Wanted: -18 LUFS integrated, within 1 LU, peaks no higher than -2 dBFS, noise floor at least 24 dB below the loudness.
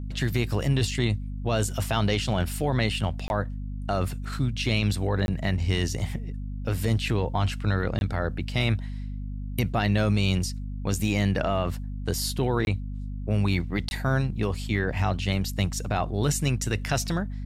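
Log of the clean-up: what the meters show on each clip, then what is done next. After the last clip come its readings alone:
dropouts 5; longest dropout 21 ms; hum 50 Hz; highest harmonic 250 Hz; hum level -30 dBFS; loudness -27.0 LUFS; peak level -10.5 dBFS; loudness target -18.0 LUFS
-> interpolate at 3.28/5.26/7.99/12.65/13.89 s, 21 ms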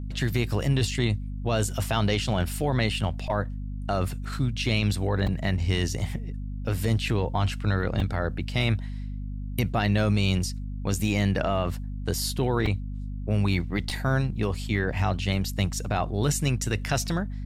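dropouts 0; hum 50 Hz; highest harmonic 250 Hz; hum level -30 dBFS
-> de-hum 50 Hz, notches 5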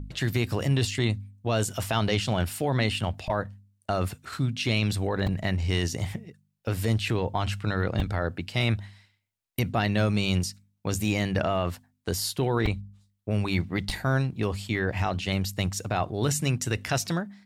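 hum not found; loudness -28.0 LUFS; peak level -10.5 dBFS; loudness target -18.0 LUFS
-> trim +10 dB; peak limiter -2 dBFS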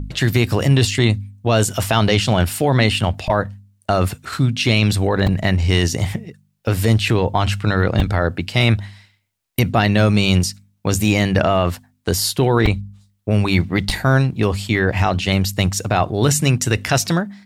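loudness -18.0 LUFS; peak level -2.0 dBFS; noise floor -64 dBFS

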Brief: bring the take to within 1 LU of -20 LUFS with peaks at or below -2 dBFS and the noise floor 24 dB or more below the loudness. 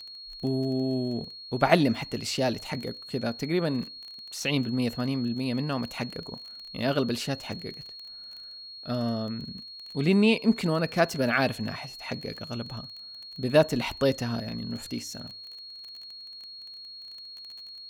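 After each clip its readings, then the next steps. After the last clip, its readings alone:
tick rate 21 per s; steady tone 4.3 kHz; tone level -41 dBFS; loudness -28.5 LUFS; peak level -5.5 dBFS; loudness target -20.0 LUFS
-> de-click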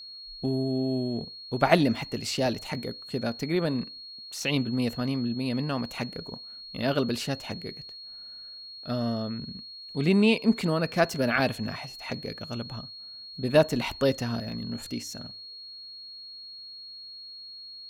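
tick rate 0.50 per s; steady tone 4.3 kHz; tone level -41 dBFS
-> band-stop 4.3 kHz, Q 30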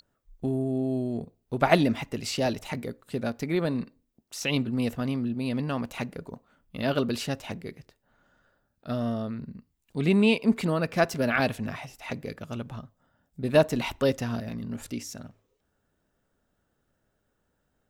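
steady tone not found; loudness -28.5 LUFS; peak level -5.5 dBFS; loudness target -20.0 LUFS
-> trim +8.5 dB; peak limiter -2 dBFS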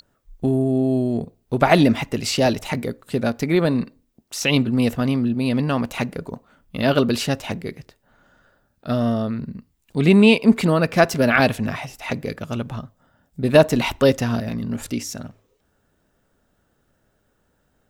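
loudness -20.0 LUFS; peak level -2.0 dBFS; noise floor -67 dBFS

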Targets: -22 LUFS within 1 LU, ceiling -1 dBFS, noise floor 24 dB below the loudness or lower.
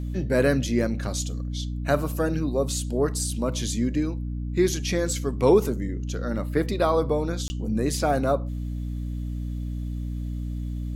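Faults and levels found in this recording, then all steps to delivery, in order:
dropouts 1; longest dropout 20 ms; hum 60 Hz; highest harmonic 300 Hz; hum level -28 dBFS; loudness -26.0 LUFS; peak level -6.5 dBFS; loudness target -22.0 LUFS
-> interpolate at 7.48 s, 20 ms; hum notches 60/120/180/240/300 Hz; trim +4 dB

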